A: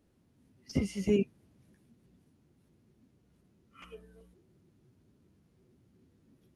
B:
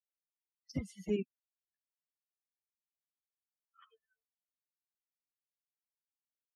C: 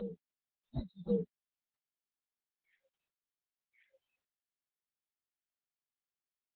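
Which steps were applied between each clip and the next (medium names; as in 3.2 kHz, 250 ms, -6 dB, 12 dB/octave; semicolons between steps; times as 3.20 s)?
expander on every frequency bin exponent 3; trim -4 dB
frequency axis rescaled in octaves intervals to 129%; reverse echo 1090 ms -9 dB; trim +2.5 dB; Opus 8 kbps 48 kHz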